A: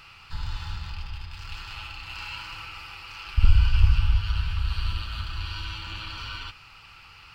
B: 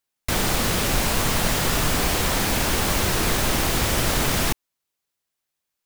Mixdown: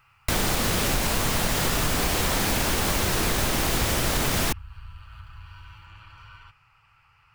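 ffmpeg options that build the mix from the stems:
ffmpeg -i stem1.wav -i stem2.wav -filter_complex "[0:a]equalizer=frequency=125:width_type=o:width=1:gain=10,equalizer=frequency=250:width_type=o:width=1:gain=-12,equalizer=frequency=1000:width_type=o:width=1:gain=5,equalizer=frequency=2000:width_type=o:width=1:gain=4,equalizer=frequency=4000:width_type=o:width=1:gain=-12,acompressor=threshold=-24dB:ratio=6,volume=-12.5dB[link_01];[1:a]acompressor=threshold=-22dB:ratio=6,volume=2dB[link_02];[link_01][link_02]amix=inputs=2:normalize=0" out.wav

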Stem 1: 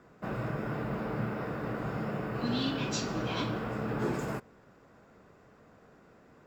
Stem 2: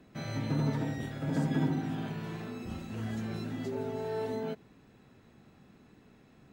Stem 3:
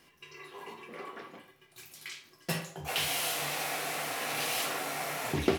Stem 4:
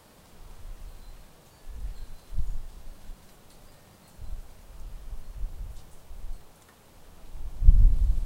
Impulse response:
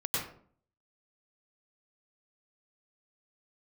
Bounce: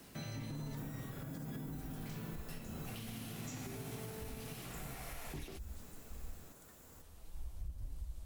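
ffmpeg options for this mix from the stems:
-filter_complex "[0:a]acrossover=split=140[link_01][link_02];[link_02]acompressor=threshold=-37dB:ratio=6[link_03];[link_01][link_03]amix=inputs=2:normalize=0,aexciter=amount=7.1:drive=8:freq=6400,adelay=550,volume=-9dB,asplit=2[link_04][link_05];[link_05]volume=-10.5dB[link_06];[1:a]acrusher=bits=10:mix=0:aa=0.000001,volume=-1.5dB[link_07];[2:a]volume=-6dB[link_08];[3:a]equalizer=frequency=60:width_type=o:width=0.77:gain=13.5,flanger=delay=5.8:depth=7.3:regen=41:speed=1.5:shape=sinusoidal,volume=-6.5dB[link_09];[link_07][link_08]amix=inputs=2:normalize=0,alimiter=level_in=5.5dB:limit=-24dB:level=0:latency=1,volume=-5.5dB,volume=0dB[link_10];[4:a]atrim=start_sample=2205[link_11];[link_06][link_11]afir=irnorm=-1:irlink=0[link_12];[link_04][link_09][link_10][link_12]amix=inputs=4:normalize=0,highshelf=frequency=5800:gain=9.5,acrossover=split=250|3900[link_13][link_14][link_15];[link_13]acompressor=threshold=-37dB:ratio=4[link_16];[link_14]acompressor=threshold=-47dB:ratio=4[link_17];[link_15]acompressor=threshold=-50dB:ratio=4[link_18];[link_16][link_17][link_18]amix=inputs=3:normalize=0,alimiter=level_in=11dB:limit=-24dB:level=0:latency=1:release=424,volume=-11dB"

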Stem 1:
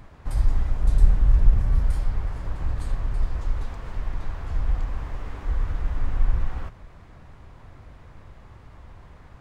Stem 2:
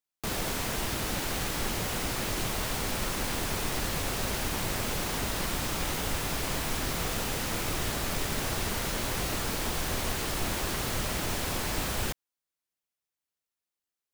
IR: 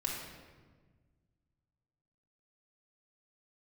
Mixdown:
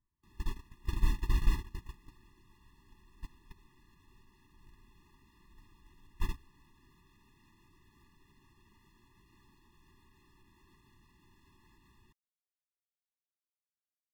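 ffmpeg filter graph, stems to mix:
-filter_complex "[0:a]volume=-11.5dB[link_01];[1:a]acrossover=split=4100[link_02][link_03];[link_03]acompressor=threshold=-45dB:ratio=4:attack=1:release=60[link_04];[link_02][link_04]amix=inputs=2:normalize=0,alimiter=level_in=1dB:limit=-24dB:level=0:latency=1:release=113,volume=-1dB,volume=-0.5dB[link_05];[link_01][link_05]amix=inputs=2:normalize=0,agate=range=-28dB:threshold=-25dB:ratio=16:detection=peak,afftfilt=real='re*eq(mod(floor(b*sr/1024/410),2),0)':imag='im*eq(mod(floor(b*sr/1024/410),2),0)':win_size=1024:overlap=0.75"

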